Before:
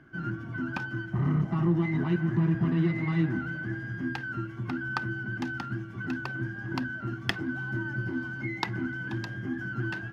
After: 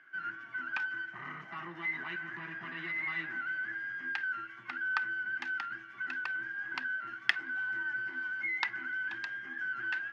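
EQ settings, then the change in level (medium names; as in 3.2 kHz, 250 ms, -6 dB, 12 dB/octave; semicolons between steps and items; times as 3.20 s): band-pass filter 1.9 kHz, Q 1.8; tilt EQ +2 dB/octave; +3.0 dB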